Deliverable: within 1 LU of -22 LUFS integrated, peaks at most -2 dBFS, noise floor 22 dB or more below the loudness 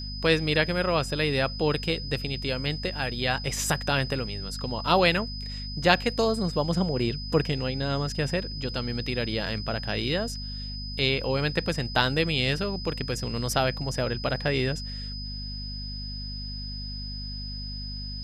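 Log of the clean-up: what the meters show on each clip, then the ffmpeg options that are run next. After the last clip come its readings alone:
hum 50 Hz; highest harmonic 250 Hz; hum level -34 dBFS; steady tone 5 kHz; tone level -37 dBFS; loudness -27.5 LUFS; peak level -3.5 dBFS; loudness target -22.0 LUFS
-> -af "bandreject=f=50:t=h:w=4,bandreject=f=100:t=h:w=4,bandreject=f=150:t=h:w=4,bandreject=f=200:t=h:w=4,bandreject=f=250:t=h:w=4"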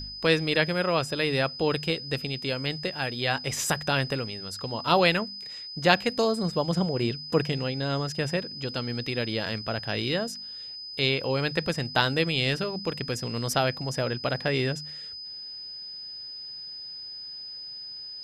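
hum not found; steady tone 5 kHz; tone level -37 dBFS
-> -af "bandreject=f=5000:w=30"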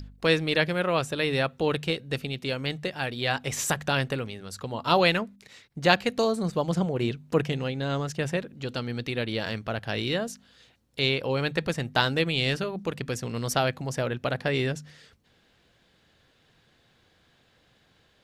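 steady tone not found; loudness -27.5 LUFS; peak level -4.0 dBFS; loudness target -22.0 LUFS
-> -af "volume=1.88,alimiter=limit=0.794:level=0:latency=1"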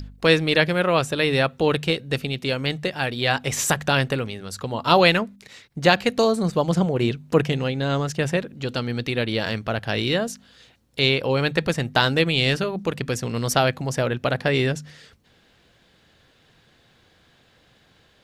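loudness -22.0 LUFS; peak level -2.0 dBFS; noise floor -59 dBFS

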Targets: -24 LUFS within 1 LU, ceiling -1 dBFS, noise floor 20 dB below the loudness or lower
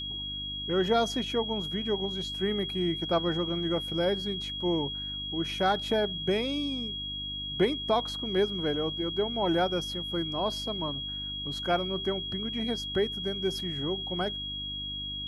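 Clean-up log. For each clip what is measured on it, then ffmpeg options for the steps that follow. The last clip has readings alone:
hum 50 Hz; highest harmonic 300 Hz; hum level -42 dBFS; steady tone 3.3 kHz; tone level -34 dBFS; loudness -30.0 LUFS; peak level -13.5 dBFS; loudness target -24.0 LUFS
-> -af "bandreject=f=50:t=h:w=4,bandreject=f=100:t=h:w=4,bandreject=f=150:t=h:w=4,bandreject=f=200:t=h:w=4,bandreject=f=250:t=h:w=4,bandreject=f=300:t=h:w=4"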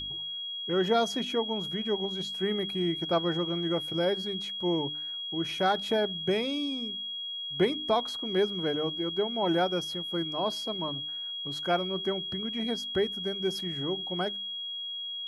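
hum not found; steady tone 3.3 kHz; tone level -34 dBFS
-> -af "bandreject=f=3300:w=30"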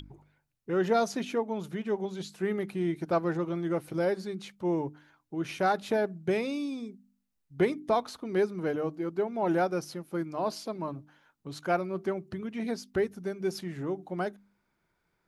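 steady tone not found; loudness -31.5 LUFS; peak level -14.0 dBFS; loudness target -24.0 LUFS
-> -af "volume=2.37"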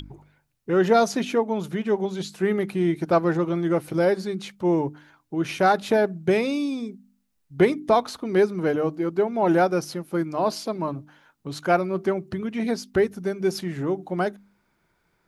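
loudness -24.0 LUFS; peak level -6.5 dBFS; noise floor -70 dBFS

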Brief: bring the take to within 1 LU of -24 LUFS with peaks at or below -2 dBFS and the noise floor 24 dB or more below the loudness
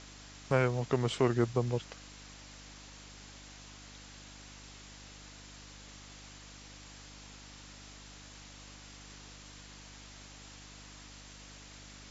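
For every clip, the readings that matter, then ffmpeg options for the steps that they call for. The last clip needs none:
hum 50 Hz; highest harmonic 300 Hz; hum level -52 dBFS; noise floor -52 dBFS; noise floor target -56 dBFS; loudness -31.5 LUFS; peak level -12.0 dBFS; loudness target -24.0 LUFS
-> -af "bandreject=f=50:t=h:w=4,bandreject=f=100:t=h:w=4,bandreject=f=150:t=h:w=4,bandreject=f=200:t=h:w=4,bandreject=f=250:t=h:w=4,bandreject=f=300:t=h:w=4"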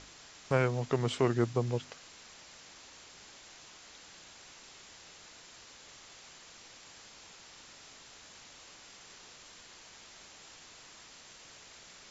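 hum not found; noise floor -54 dBFS; noise floor target -56 dBFS
-> -af "afftdn=nr=6:nf=-54"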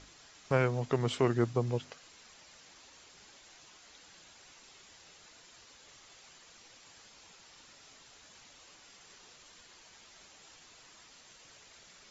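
noise floor -58 dBFS; loudness -31.0 LUFS; peak level -12.0 dBFS; loudness target -24.0 LUFS
-> -af "volume=2.24"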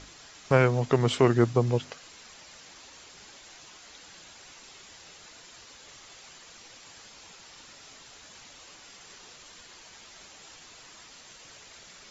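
loudness -24.0 LUFS; peak level -5.0 dBFS; noise floor -51 dBFS

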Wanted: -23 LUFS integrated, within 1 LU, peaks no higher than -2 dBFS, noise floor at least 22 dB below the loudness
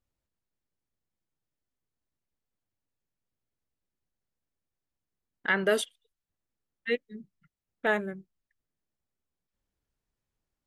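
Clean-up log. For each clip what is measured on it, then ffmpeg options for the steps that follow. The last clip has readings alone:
loudness -30.0 LUFS; peak level -13.5 dBFS; loudness target -23.0 LUFS
-> -af "volume=2.24"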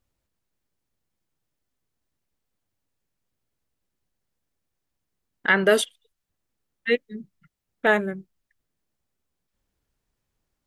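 loudness -23.0 LUFS; peak level -6.5 dBFS; noise floor -81 dBFS

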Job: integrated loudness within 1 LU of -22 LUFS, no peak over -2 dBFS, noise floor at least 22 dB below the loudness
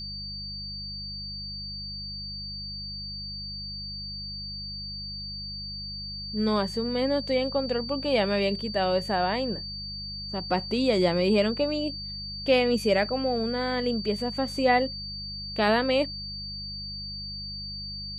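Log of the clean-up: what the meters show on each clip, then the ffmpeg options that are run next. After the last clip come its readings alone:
hum 50 Hz; highest harmonic 200 Hz; hum level -39 dBFS; steady tone 4.6 kHz; tone level -35 dBFS; loudness -28.5 LUFS; peak level -9.0 dBFS; loudness target -22.0 LUFS
-> -af "bandreject=f=50:t=h:w=4,bandreject=f=100:t=h:w=4,bandreject=f=150:t=h:w=4,bandreject=f=200:t=h:w=4"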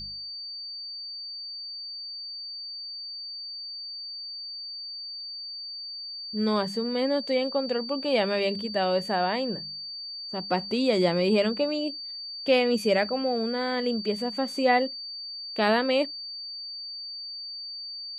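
hum not found; steady tone 4.6 kHz; tone level -35 dBFS
-> -af "bandreject=f=4600:w=30"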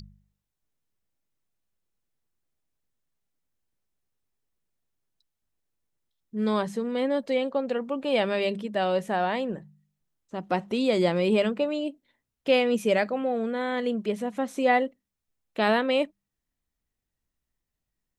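steady tone not found; loudness -26.5 LUFS; peak level -9.5 dBFS; loudness target -22.0 LUFS
-> -af "volume=1.68"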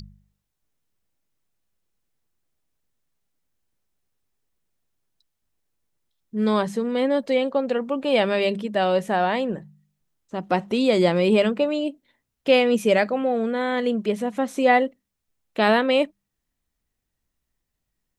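loudness -22.0 LUFS; peak level -5.0 dBFS; noise floor -80 dBFS

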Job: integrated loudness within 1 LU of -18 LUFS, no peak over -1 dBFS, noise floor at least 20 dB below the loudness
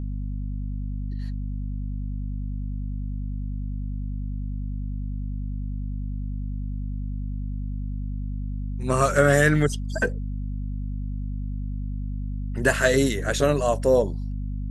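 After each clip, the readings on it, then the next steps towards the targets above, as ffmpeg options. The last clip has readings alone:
hum 50 Hz; highest harmonic 250 Hz; hum level -27 dBFS; loudness -27.0 LUFS; peak level -5.0 dBFS; loudness target -18.0 LUFS
-> -af "bandreject=f=50:t=h:w=6,bandreject=f=100:t=h:w=6,bandreject=f=150:t=h:w=6,bandreject=f=200:t=h:w=6,bandreject=f=250:t=h:w=6"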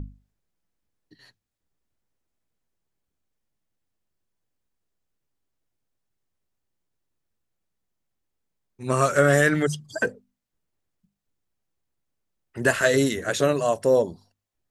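hum not found; loudness -22.5 LUFS; peak level -6.0 dBFS; loudness target -18.0 LUFS
-> -af "volume=1.68"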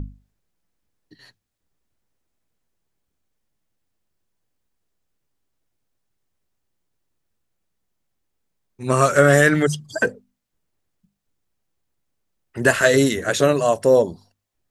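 loudness -18.0 LUFS; peak level -1.5 dBFS; noise floor -77 dBFS

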